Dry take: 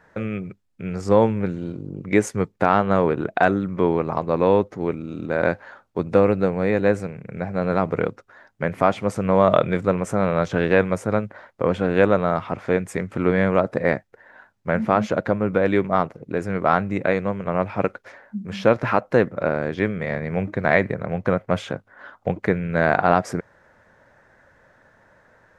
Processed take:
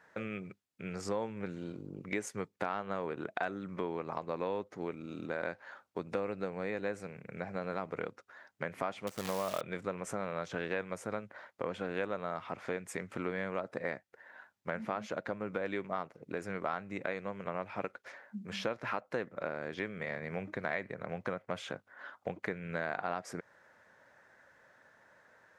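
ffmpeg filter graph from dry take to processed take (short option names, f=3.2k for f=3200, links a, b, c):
-filter_complex "[0:a]asettb=1/sr,asplit=3[a][b][c];[a]atrim=end=9.074[d];[b]atrim=start=9.07:end=9.61,asetpts=PTS-STARTPTS,afade=t=in:d=0.004:c=qsin,afade=t=out:st=0.536:d=0.004:c=qsin,highshelf=f=6k:g=-8.5,asoftclip=type=hard:threshold=-3.5dB,acrusher=bits=5:dc=4:mix=0:aa=0.000001[e];[c]atrim=start=9.606[f];[d][e]acrossfade=d=0.004:c1=hsin:c2=qsin[g];[g][f]acrossfade=d=0.004:c1=qsin:c2=hsin,highpass=f=200:p=1,tiltshelf=f=1.2k:g=-3,acompressor=threshold=-28dB:ratio=3,volume=-6.5dB"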